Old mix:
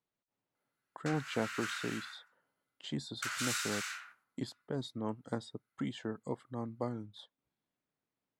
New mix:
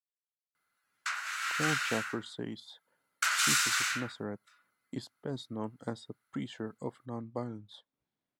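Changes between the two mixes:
speech: entry +0.55 s; background +9.0 dB

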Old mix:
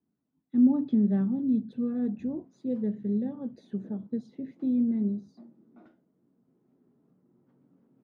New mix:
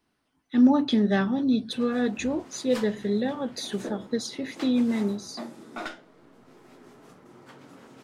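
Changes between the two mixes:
background +9.5 dB; master: remove band-pass 190 Hz, Q 1.6

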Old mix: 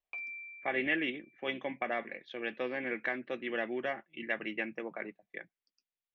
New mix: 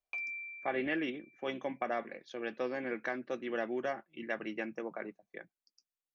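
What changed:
speech: add band shelf 2600 Hz -9 dB 1.3 oct; master: remove air absorption 190 m

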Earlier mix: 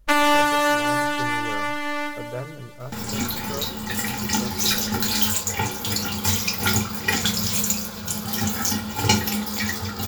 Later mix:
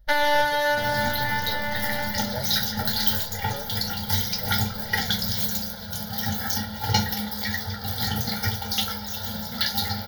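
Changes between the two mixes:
second sound: entry -2.15 s; master: add fixed phaser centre 1700 Hz, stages 8

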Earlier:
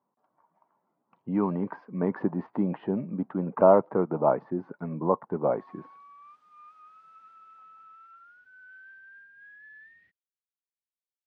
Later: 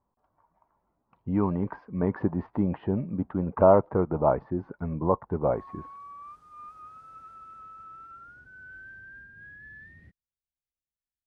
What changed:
speech: remove HPF 160 Hz 24 dB/oct; background: remove band-pass 2600 Hz, Q 1.1

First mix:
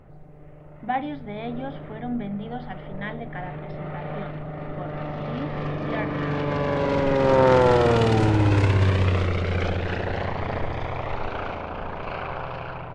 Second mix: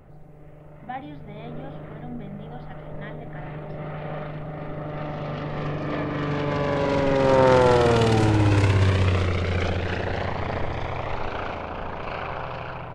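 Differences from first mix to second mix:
speech -8.5 dB; master: add high shelf 5900 Hz +8.5 dB

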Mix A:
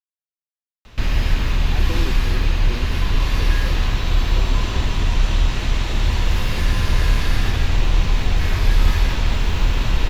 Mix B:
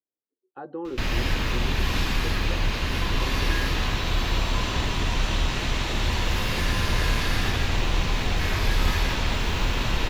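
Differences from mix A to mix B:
speech: entry -1.15 s; master: add low shelf 110 Hz -9.5 dB

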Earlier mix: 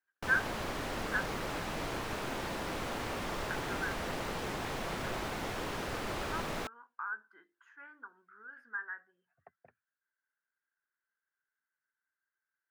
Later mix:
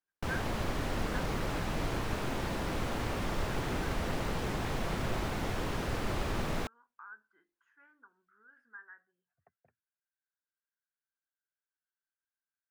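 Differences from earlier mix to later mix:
speech -11.0 dB; master: add low shelf 210 Hz +10 dB

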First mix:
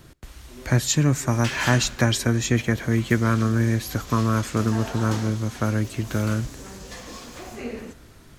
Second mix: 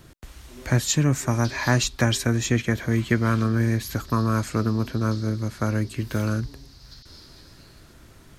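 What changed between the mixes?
speech: send off; background: add Butterworth band-pass 4500 Hz, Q 3.3

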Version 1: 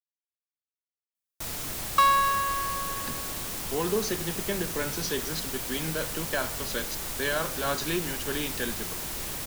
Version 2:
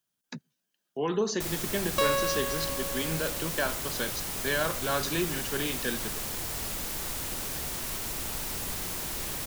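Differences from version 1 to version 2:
speech: entry -2.75 s; second sound: remove resonant high-pass 1200 Hz, resonance Q 4.9

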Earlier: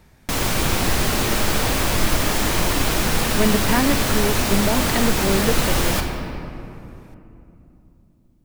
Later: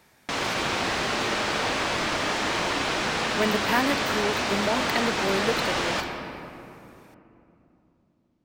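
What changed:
background: add air absorption 120 m; master: add HPF 540 Hz 6 dB/oct

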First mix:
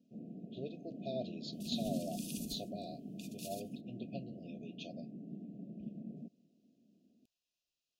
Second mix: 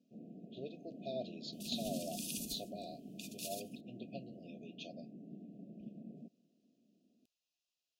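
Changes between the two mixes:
second sound +4.5 dB; master: add low shelf 230 Hz -8 dB

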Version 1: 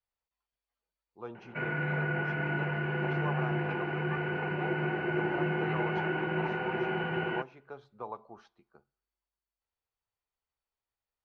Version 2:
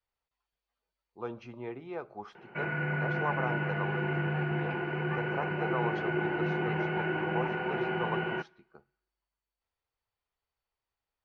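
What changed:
speech +4.5 dB; background: entry +1.00 s

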